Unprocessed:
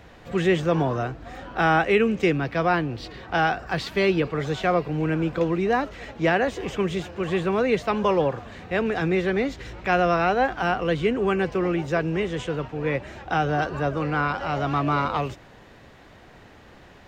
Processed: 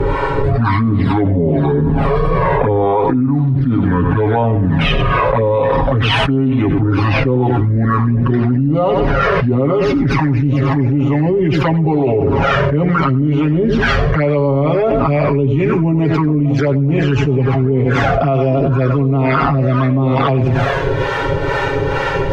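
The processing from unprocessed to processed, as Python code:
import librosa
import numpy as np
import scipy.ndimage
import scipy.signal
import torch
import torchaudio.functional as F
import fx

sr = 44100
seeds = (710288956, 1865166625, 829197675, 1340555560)

y = fx.speed_glide(x, sr, from_pct=58, to_pct=95)
y = fx.lowpass(y, sr, hz=1600.0, slope=6)
y = fx.low_shelf(y, sr, hz=75.0, db=-4.5)
y = y + 0.9 * np.pad(y, (int(7.3 * sr / 1000.0), 0))[:len(y)]
y = fx.dynamic_eq(y, sr, hz=150.0, q=2.6, threshold_db=-38.0, ratio=4.0, max_db=4)
y = fx.harmonic_tremolo(y, sr, hz=2.2, depth_pct=70, crossover_hz=550.0)
y = fx.env_flanger(y, sr, rest_ms=2.3, full_db=-19.0)
y = fx.echo_feedback(y, sr, ms=95, feedback_pct=21, wet_db=-12)
y = fx.env_flatten(y, sr, amount_pct=100)
y = y * librosa.db_to_amplitude(-2.0)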